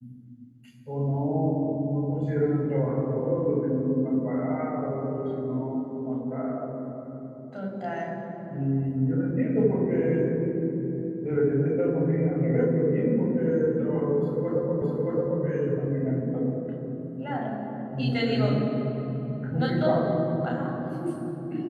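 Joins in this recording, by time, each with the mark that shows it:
0:14.82: the same again, the last 0.62 s

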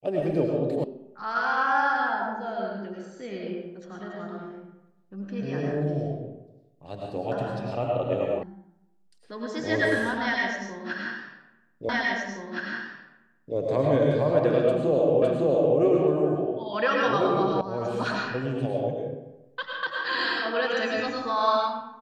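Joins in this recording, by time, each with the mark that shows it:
0:00.84: cut off before it has died away
0:08.43: cut off before it has died away
0:11.89: the same again, the last 1.67 s
0:15.22: the same again, the last 0.56 s
0:17.61: cut off before it has died away

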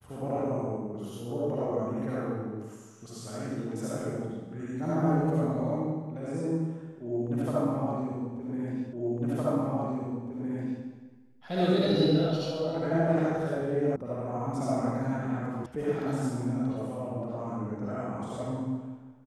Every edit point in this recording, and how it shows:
0:08.93: the same again, the last 1.91 s
0:13.96: cut off before it has died away
0:15.66: cut off before it has died away

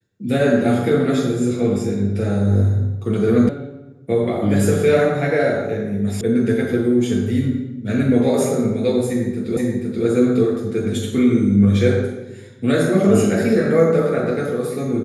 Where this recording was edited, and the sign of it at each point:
0:03.49: cut off before it has died away
0:06.21: cut off before it has died away
0:09.57: the same again, the last 0.48 s

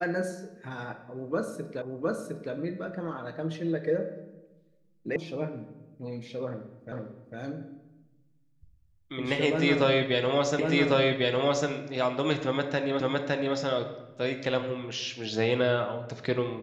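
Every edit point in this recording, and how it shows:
0:01.82: the same again, the last 0.71 s
0:05.16: cut off before it has died away
0:06.92: the same again, the last 0.45 s
0:10.59: the same again, the last 1.1 s
0:13.00: the same again, the last 0.56 s

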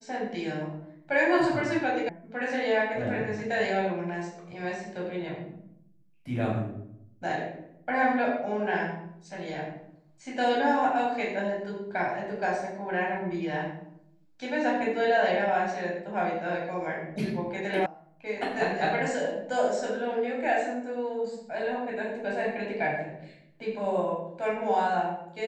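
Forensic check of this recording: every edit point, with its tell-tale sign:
0:02.09: cut off before it has died away
0:17.86: cut off before it has died away

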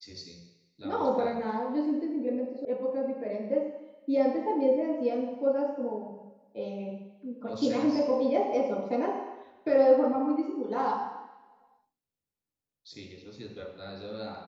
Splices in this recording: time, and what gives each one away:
0:02.65: cut off before it has died away

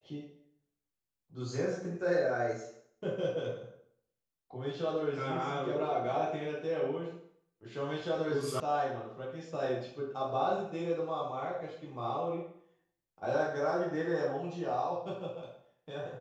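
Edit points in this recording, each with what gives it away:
0:08.60: cut off before it has died away

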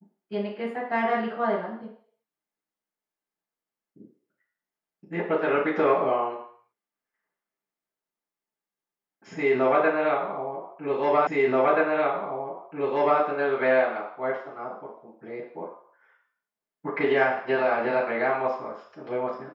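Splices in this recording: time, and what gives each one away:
0:11.27: the same again, the last 1.93 s

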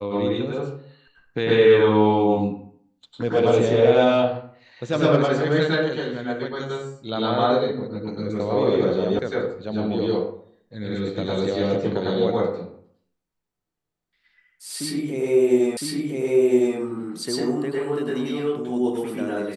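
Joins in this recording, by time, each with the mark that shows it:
0:09.19: cut off before it has died away
0:15.77: the same again, the last 1.01 s

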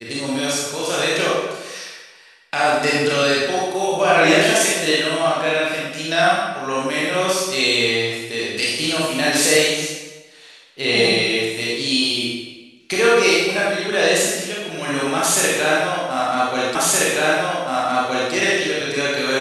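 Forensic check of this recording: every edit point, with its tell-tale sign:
0:16.75: the same again, the last 1.57 s

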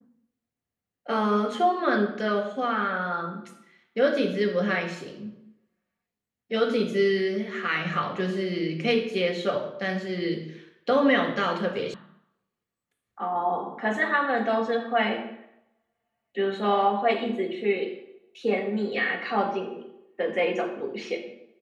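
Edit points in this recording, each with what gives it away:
0:11.94: cut off before it has died away

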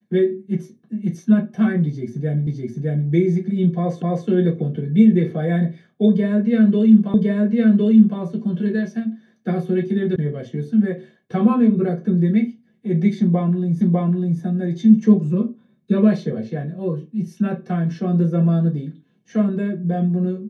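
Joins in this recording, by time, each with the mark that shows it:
0:02.47: the same again, the last 0.61 s
0:04.02: the same again, the last 0.26 s
0:07.14: the same again, the last 1.06 s
0:10.16: cut off before it has died away
0:13.81: the same again, the last 0.6 s

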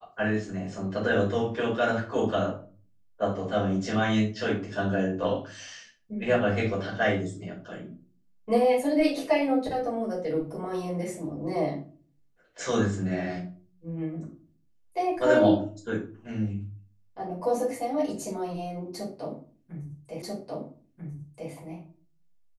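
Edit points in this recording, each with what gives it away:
0:20.22: the same again, the last 1.29 s

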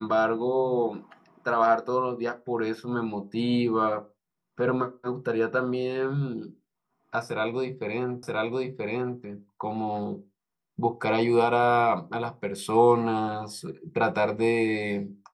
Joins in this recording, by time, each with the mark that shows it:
0:08.23: the same again, the last 0.98 s

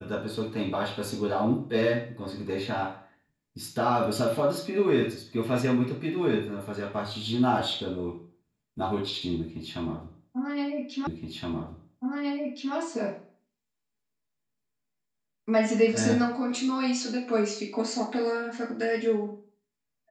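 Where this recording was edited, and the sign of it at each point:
0:11.07: the same again, the last 1.67 s

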